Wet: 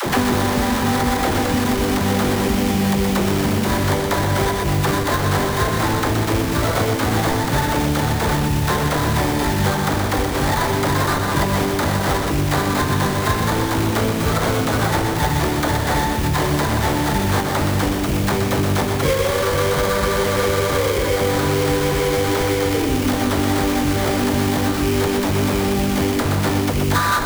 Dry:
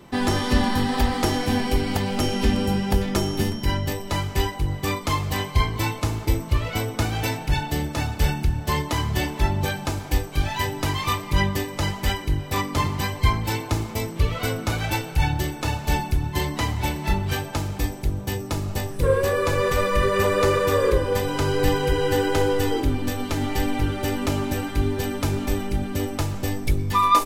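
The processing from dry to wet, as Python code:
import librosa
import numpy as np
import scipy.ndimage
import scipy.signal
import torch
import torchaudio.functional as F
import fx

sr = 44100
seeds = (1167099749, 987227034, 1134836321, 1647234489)

p1 = fx.highpass(x, sr, hz=110.0, slope=6)
p2 = fx.high_shelf(p1, sr, hz=9100.0, db=9.0)
p3 = fx.over_compress(p2, sr, threshold_db=-28.0, ratio=-1.0)
p4 = p2 + (p3 * librosa.db_to_amplitude(-0.5))
p5 = fx.sample_hold(p4, sr, seeds[0], rate_hz=2700.0, jitter_pct=20)
p6 = fx.mod_noise(p5, sr, seeds[1], snr_db=21)
p7 = fx.dispersion(p6, sr, late='lows', ms=59.0, hz=380.0)
p8 = p7 + fx.echo_single(p7, sr, ms=122, db=-6.0, dry=0)
y = fx.band_squash(p8, sr, depth_pct=100)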